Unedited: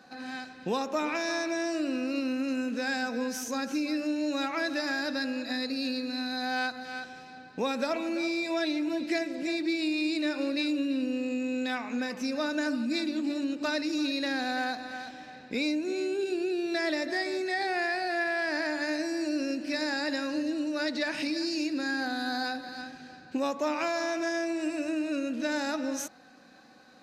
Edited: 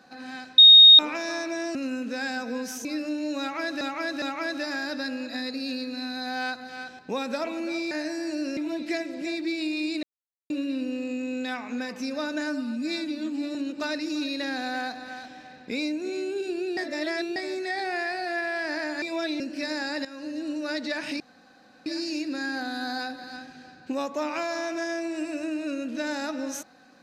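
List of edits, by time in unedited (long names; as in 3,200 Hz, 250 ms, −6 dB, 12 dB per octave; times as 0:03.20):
0:00.58–0:00.99: beep over 3,720 Hz −7.5 dBFS
0:01.75–0:02.41: remove
0:03.51–0:03.83: remove
0:04.38–0:04.79: repeat, 3 plays
0:07.15–0:07.48: remove
0:08.40–0:08.78: swap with 0:18.85–0:19.51
0:10.24–0:10.71: silence
0:12.62–0:13.38: time-stretch 1.5×
0:16.60–0:17.19: reverse
0:20.16–0:20.62: fade in, from −13.5 dB
0:21.31: splice in room tone 0.66 s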